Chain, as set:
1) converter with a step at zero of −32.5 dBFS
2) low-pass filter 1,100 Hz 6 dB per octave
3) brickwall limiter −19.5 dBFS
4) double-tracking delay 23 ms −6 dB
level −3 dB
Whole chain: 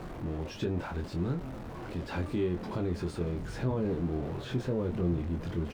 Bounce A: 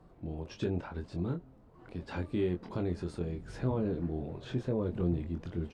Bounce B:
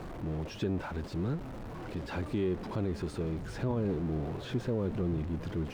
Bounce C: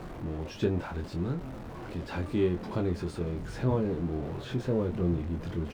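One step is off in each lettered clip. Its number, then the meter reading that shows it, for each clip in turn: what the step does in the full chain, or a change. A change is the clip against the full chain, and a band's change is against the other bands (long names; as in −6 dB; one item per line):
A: 1, distortion level −11 dB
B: 4, change in crest factor −2.5 dB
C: 3, change in crest factor +2.5 dB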